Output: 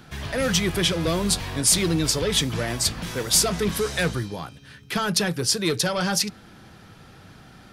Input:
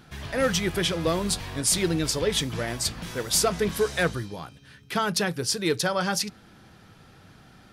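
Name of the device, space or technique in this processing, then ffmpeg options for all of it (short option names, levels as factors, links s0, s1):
one-band saturation: -filter_complex "[0:a]acrossover=split=230|2500[s0][s1][s2];[s1]asoftclip=type=tanh:threshold=0.0473[s3];[s0][s3][s2]amix=inputs=3:normalize=0,volume=1.68"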